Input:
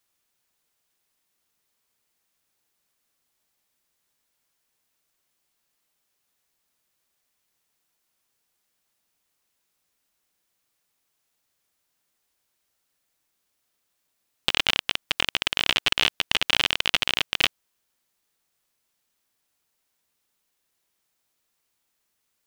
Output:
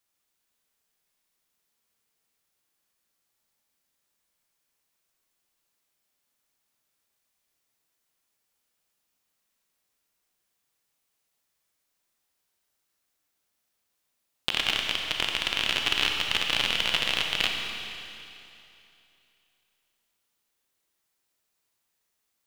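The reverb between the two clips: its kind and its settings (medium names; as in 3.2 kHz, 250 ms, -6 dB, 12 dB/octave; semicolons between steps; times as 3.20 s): Schroeder reverb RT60 2.8 s, combs from 28 ms, DRR 1.5 dB; trim -4.5 dB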